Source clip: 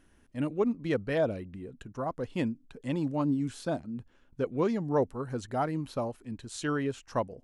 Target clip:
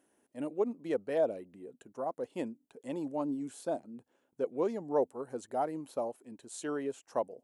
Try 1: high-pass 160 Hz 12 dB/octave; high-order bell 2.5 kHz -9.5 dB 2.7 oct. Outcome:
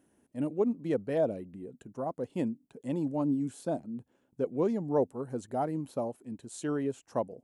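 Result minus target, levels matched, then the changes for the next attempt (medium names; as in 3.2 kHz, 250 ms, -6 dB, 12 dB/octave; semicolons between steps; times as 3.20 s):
125 Hz band +9.5 dB
change: high-pass 380 Hz 12 dB/octave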